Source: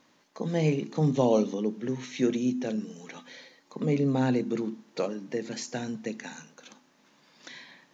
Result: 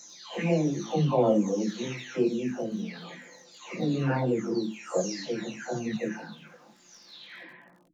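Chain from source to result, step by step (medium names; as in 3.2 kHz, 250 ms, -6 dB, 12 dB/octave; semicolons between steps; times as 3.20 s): delay that grows with frequency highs early, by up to 740 ms; crackle 15 per s -49 dBFS; chorus voices 6, 1.4 Hz, delay 19 ms, depth 3 ms; trim +7 dB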